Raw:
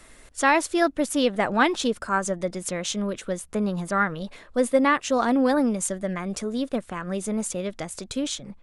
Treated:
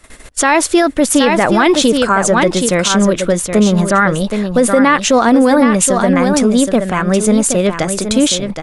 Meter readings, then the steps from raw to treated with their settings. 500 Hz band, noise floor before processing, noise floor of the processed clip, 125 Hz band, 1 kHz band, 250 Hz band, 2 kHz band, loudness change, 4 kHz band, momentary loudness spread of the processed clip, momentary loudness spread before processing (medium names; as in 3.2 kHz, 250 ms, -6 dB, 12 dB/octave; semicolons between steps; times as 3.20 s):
+12.5 dB, -52 dBFS, -32 dBFS, +15.5 dB, +11.0 dB, +13.5 dB, +10.5 dB, +12.5 dB, +14.0 dB, 5 LU, 10 LU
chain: gate -48 dBFS, range -15 dB; delay 771 ms -8.5 dB; loudness maximiser +17 dB; trim -1 dB